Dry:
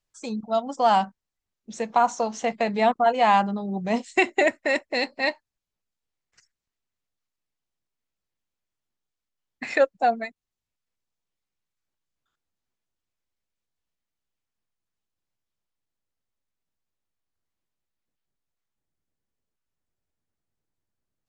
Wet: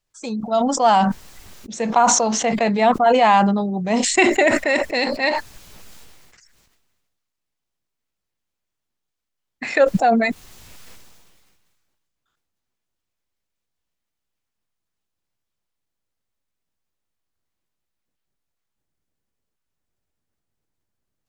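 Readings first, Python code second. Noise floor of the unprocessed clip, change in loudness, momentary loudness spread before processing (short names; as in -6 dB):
under -85 dBFS, +6.0 dB, 13 LU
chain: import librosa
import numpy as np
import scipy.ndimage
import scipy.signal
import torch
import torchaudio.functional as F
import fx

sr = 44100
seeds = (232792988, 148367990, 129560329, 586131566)

y = fx.sustainer(x, sr, db_per_s=32.0)
y = F.gain(torch.from_numpy(y), 4.0).numpy()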